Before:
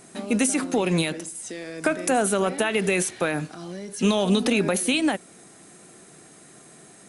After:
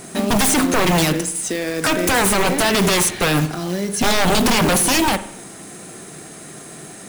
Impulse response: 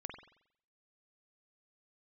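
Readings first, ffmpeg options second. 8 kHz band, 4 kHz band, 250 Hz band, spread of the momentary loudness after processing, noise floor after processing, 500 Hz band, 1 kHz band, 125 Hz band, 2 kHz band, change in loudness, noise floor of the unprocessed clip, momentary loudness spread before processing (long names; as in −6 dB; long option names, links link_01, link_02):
+9.0 dB, +10.0 dB, +4.5 dB, 20 LU, −38 dBFS, +4.0 dB, +10.0 dB, +8.0 dB, +8.0 dB, +6.5 dB, −50 dBFS, 13 LU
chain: -filter_complex "[0:a]aeval=exprs='0.0708*(abs(mod(val(0)/0.0708+3,4)-2)-1)':channel_layout=same,acrusher=bits=3:mode=log:mix=0:aa=0.000001,asplit=2[link_01][link_02];[link_02]lowshelf=frequency=160:gain=8[link_03];[1:a]atrim=start_sample=2205[link_04];[link_03][link_04]afir=irnorm=-1:irlink=0,volume=-2.5dB[link_05];[link_01][link_05]amix=inputs=2:normalize=0,volume=8.5dB"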